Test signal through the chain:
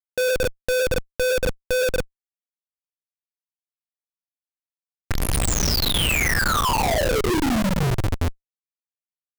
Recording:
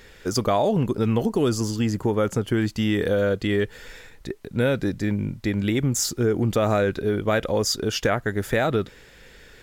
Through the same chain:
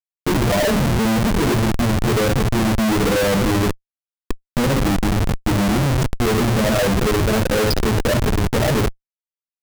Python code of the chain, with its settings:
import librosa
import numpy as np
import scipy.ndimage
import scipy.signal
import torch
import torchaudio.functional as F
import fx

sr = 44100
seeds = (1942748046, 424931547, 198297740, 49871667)

y = fx.rev_double_slope(x, sr, seeds[0], early_s=0.67, late_s=2.7, knee_db=-18, drr_db=-2.0)
y = fx.spec_topn(y, sr, count=8)
y = fx.schmitt(y, sr, flips_db=-22.5)
y = y * librosa.db_to_amplitude(4.0)